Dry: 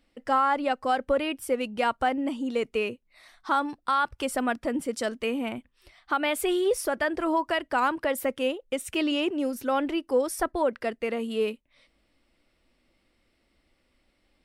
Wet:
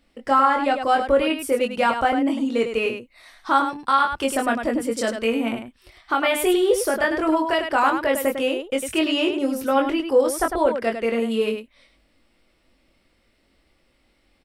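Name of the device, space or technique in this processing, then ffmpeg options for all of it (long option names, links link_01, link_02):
slapback doubling: -filter_complex "[0:a]asplit=3[link_01][link_02][link_03];[link_02]adelay=22,volume=-4dB[link_04];[link_03]adelay=102,volume=-7dB[link_05];[link_01][link_04][link_05]amix=inputs=3:normalize=0,volume=4dB"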